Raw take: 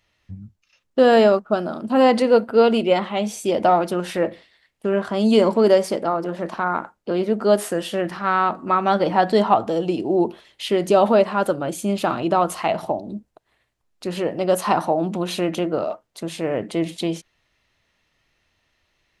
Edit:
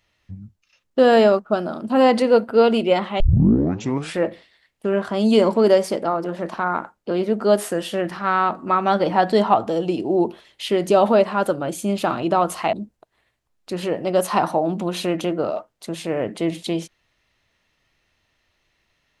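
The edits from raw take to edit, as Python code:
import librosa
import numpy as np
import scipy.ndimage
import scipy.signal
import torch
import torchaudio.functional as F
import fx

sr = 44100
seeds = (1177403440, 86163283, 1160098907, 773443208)

y = fx.edit(x, sr, fx.tape_start(start_s=3.2, length_s=0.99),
    fx.cut(start_s=12.73, length_s=0.34), tone=tone)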